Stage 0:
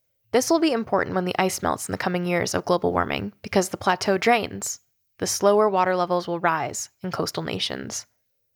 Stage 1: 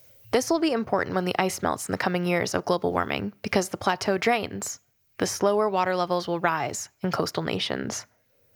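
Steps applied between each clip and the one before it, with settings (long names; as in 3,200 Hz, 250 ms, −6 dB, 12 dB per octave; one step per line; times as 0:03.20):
multiband upward and downward compressor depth 70%
level −3 dB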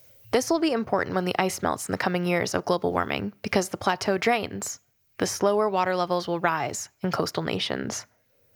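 no processing that can be heard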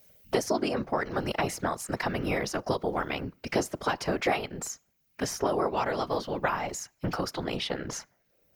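random phases in short frames
level −4.5 dB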